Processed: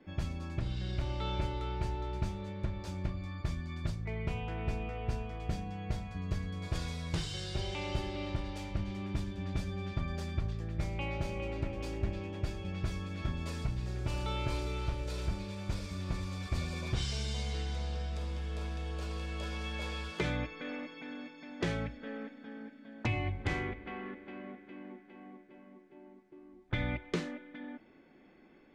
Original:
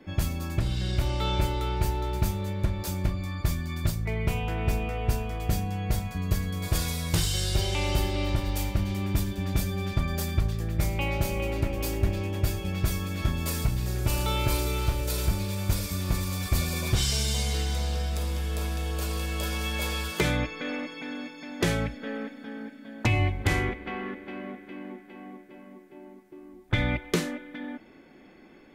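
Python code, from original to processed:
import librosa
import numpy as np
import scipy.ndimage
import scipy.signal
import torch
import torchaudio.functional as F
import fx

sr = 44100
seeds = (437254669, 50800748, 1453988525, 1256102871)

y = fx.air_absorb(x, sr, metres=100.0)
y = fx.hum_notches(y, sr, base_hz=50, count=2)
y = y * 10.0 ** (-7.5 / 20.0)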